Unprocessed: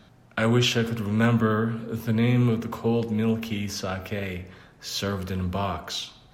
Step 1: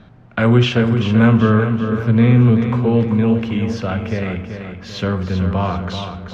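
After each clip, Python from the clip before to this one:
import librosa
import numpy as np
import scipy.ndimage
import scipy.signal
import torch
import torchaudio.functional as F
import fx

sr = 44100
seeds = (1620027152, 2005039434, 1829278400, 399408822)

y = scipy.signal.sosfilt(scipy.signal.butter(2, 8000.0, 'lowpass', fs=sr, output='sos'), x)
y = fx.bass_treble(y, sr, bass_db=4, treble_db=-15)
y = fx.echo_feedback(y, sr, ms=385, feedback_pct=44, wet_db=-8)
y = F.gain(torch.from_numpy(y), 6.5).numpy()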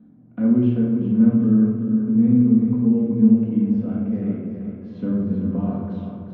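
y = fx.rider(x, sr, range_db=4, speed_s=2.0)
y = fx.bandpass_q(y, sr, hz=250.0, q=3.0)
y = fx.room_shoebox(y, sr, seeds[0], volume_m3=680.0, walls='mixed', distance_m=1.9)
y = F.gain(torch.from_numpy(y), -4.0).numpy()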